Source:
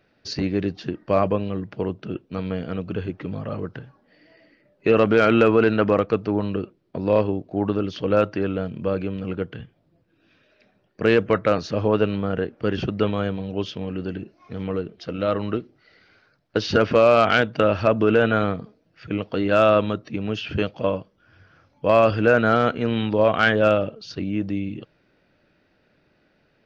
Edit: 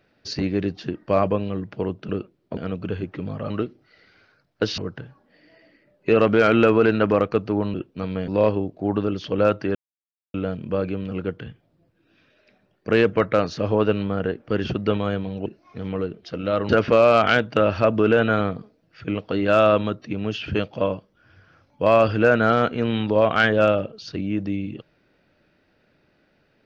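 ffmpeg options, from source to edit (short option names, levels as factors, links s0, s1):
-filter_complex "[0:a]asplit=10[s0][s1][s2][s3][s4][s5][s6][s7][s8][s9];[s0]atrim=end=2.092[s10];[s1]atrim=start=6.518:end=7.002[s11];[s2]atrim=start=2.628:end=3.562[s12];[s3]atrim=start=15.438:end=16.722[s13];[s4]atrim=start=3.558:end=6.522[s14];[s5]atrim=start=2.088:end=2.632[s15];[s6]atrim=start=6.998:end=8.47,asetpts=PTS-STARTPTS,afade=t=out:st=1.468:d=0.004:c=hsin,apad=pad_dur=0.59[s16];[s7]atrim=start=8.47:end=13.592,asetpts=PTS-STARTPTS,afade=t=in:d=0.004:c=hsin[s17];[s8]atrim=start=14.208:end=15.442[s18];[s9]atrim=start=16.718[s19];[s10][s11]acrossfade=d=0.004:c1=hsin:c2=hsin[s20];[s20][s12]acrossfade=d=0.004:c1=hsin:c2=hsin[s21];[s21][s13]acrossfade=d=0.004:c1=hsin:c2=hsin[s22];[s22][s14]acrossfade=d=0.004:c1=hsin:c2=hsin[s23];[s23][s15]acrossfade=d=0.004:c1=hsin:c2=hsin[s24];[s16][s17]concat=n=2:v=0:a=1[s25];[s24][s25]acrossfade=d=0.004:c1=hsin:c2=hsin[s26];[s26][s18]acrossfade=d=0.004:c1=hsin:c2=hsin[s27];[s27][s19]acrossfade=d=0.004:c1=hsin:c2=hsin"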